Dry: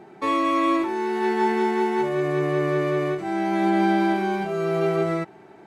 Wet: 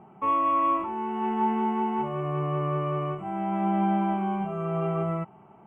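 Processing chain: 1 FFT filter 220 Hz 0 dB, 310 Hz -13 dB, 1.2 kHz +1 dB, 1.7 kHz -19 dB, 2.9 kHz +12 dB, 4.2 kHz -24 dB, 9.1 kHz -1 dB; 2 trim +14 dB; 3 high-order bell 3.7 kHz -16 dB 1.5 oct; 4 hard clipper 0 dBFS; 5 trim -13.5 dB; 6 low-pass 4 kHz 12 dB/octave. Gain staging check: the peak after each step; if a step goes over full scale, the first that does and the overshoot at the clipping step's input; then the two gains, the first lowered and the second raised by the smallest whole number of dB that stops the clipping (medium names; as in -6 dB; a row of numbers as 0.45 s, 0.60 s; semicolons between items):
-14.5 dBFS, -0.5 dBFS, -2.0 dBFS, -2.0 dBFS, -15.5 dBFS, -15.5 dBFS; nothing clips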